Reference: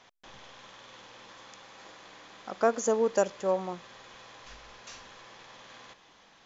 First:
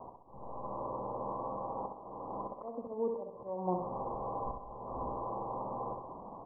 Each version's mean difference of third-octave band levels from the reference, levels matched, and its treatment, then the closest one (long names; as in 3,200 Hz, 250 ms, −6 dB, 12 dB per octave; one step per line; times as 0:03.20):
16.0 dB: Butterworth low-pass 1,100 Hz 96 dB per octave
downward compressor 4 to 1, threshold −36 dBFS, peak gain reduction 14 dB
volume swells 534 ms
on a send: repeating echo 65 ms, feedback 49%, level −5.5 dB
on the sum: level +14.5 dB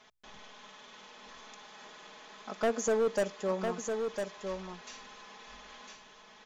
4.0 dB: mains-hum notches 60/120 Hz
comb filter 4.7 ms, depth 73%
hard clipping −20.5 dBFS, distortion −9 dB
on a send: single-tap delay 1,004 ms −5.5 dB
on the sum: level −3.5 dB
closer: second